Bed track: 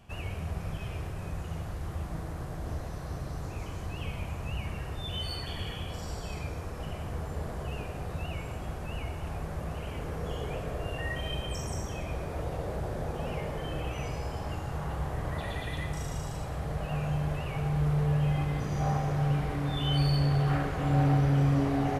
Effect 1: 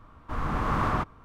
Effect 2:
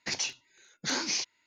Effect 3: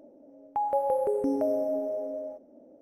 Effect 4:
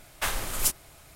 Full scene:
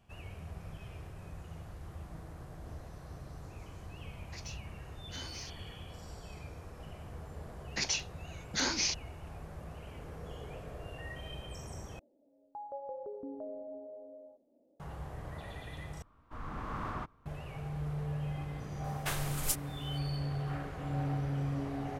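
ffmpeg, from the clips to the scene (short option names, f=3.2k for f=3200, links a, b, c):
-filter_complex "[2:a]asplit=2[a][b];[0:a]volume=-10dB[c];[a]asoftclip=type=tanh:threshold=-21dB[d];[3:a]lowpass=f=1.2k:w=0.5412,lowpass=f=1.2k:w=1.3066[e];[c]asplit=3[f][g][h];[f]atrim=end=11.994[i];[e]atrim=end=2.81,asetpts=PTS-STARTPTS,volume=-16dB[j];[g]atrim=start=14.796:end=16.024[k];[1:a]atrim=end=1.24,asetpts=PTS-STARTPTS,volume=-12.5dB[l];[h]atrim=start=17.256[m];[d]atrim=end=1.46,asetpts=PTS-STARTPTS,volume=-15.5dB,afade=t=in:d=0.004:c=hsin,afade=t=out:st=1.456:d=0.004:c=hsin,adelay=4260[n];[b]atrim=end=1.46,asetpts=PTS-STARTPTS,volume=-1dB,afade=t=in:d=0.004:c=hsin,afade=t=out:st=1.456:d=0.004:c=hsin,adelay=339570S[o];[4:a]atrim=end=1.15,asetpts=PTS-STARTPTS,volume=-7.5dB,afade=t=in:d=0.004:c=hsin,afade=t=out:st=1.146:d=0.004:c=hsin,adelay=18840[p];[i][j]acrossfade=d=0.004:c1=hsin:c2=hsin[q];[q][k]acrossfade=d=0.004:c1=hsin:c2=hsin[r];[r][l]acrossfade=d=0.004:c1=hsin:c2=hsin[s];[s][m]acrossfade=d=0.004:c1=hsin:c2=hsin[t];[t][n][o][p]amix=inputs=4:normalize=0"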